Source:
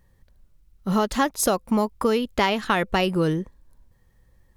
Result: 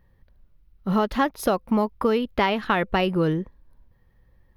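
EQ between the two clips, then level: tone controls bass 0 dB, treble -5 dB; bell 7700 Hz -15 dB 0.7 oct; 0.0 dB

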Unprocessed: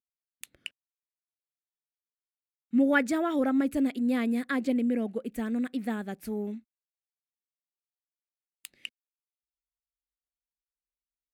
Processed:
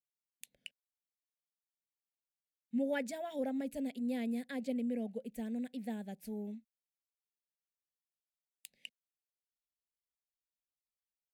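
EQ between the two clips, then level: fixed phaser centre 330 Hz, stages 6; -7.0 dB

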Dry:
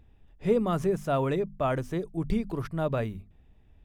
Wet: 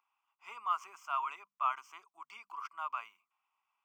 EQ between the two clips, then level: dynamic EQ 2700 Hz, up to +5 dB, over -49 dBFS, Q 0.91; ladder high-pass 980 Hz, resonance 65%; fixed phaser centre 2600 Hz, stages 8; +3.5 dB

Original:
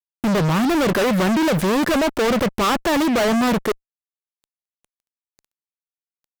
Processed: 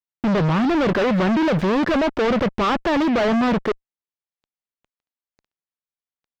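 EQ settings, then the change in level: air absorption 200 m; high shelf 9100 Hz +6.5 dB; 0.0 dB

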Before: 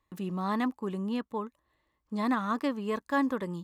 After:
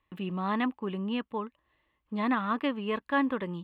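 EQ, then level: resonant high shelf 4200 Hz -13 dB, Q 3; 0.0 dB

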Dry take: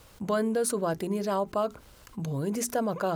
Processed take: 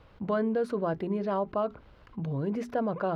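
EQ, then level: air absorption 350 m; 0.0 dB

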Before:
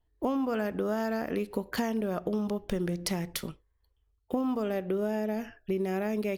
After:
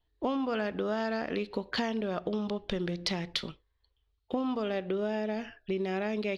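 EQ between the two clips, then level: synth low-pass 3900 Hz, resonance Q 2.7; low shelf 360 Hz -3.5 dB; 0.0 dB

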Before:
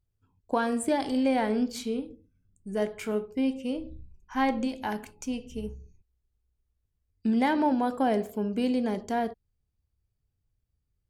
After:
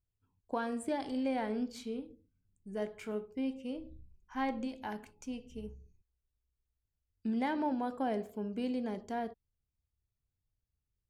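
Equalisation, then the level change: high shelf 7000 Hz -6.5 dB; -8.5 dB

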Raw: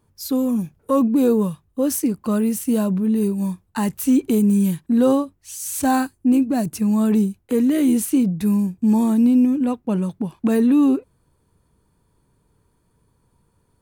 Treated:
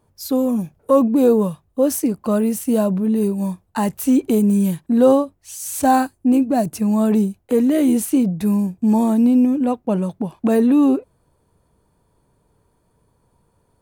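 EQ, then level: bell 650 Hz +8 dB 1 oct; 0.0 dB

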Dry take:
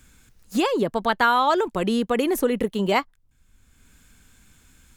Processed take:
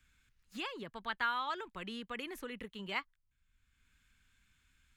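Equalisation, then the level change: three-band isolator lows -14 dB, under 550 Hz, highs -12 dB, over 3500 Hz; passive tone stack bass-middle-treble 6-0-2; high shelf 5200 Hz -7 dB; +9.5 dB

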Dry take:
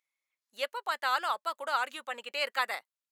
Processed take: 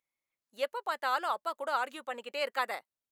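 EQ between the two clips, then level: tilt shelf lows +6.5 dB, about 900 Hz; high shelf 7500 Hz +4.5 dB; 0.0 dB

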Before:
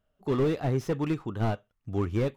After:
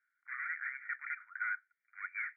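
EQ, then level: rippled Chebyshev high-pass 1400 Hz, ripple 3 dB; brick-wall FIR low-pass 2400 Hz; air absorption 370 m; +13.0 dB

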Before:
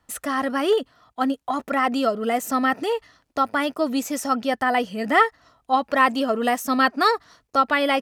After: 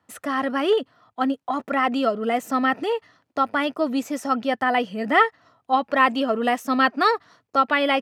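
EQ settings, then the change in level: HPF 96 Hz 24 dB/oct; high shelf 4200 Hz -10.5 dB; dynamic EQ 2900 Hz, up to +5 dB, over -37 dBFS, Q 1.4; 0.0 dB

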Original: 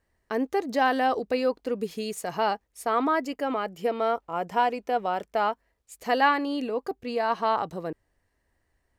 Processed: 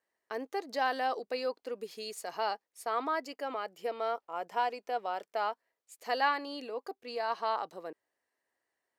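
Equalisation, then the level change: dynamic EQ 4600 Hz, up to +7 dB, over -56 dBFS, Q 3.4; HPF 410 Hz 12 dB/oct; -7.0 dB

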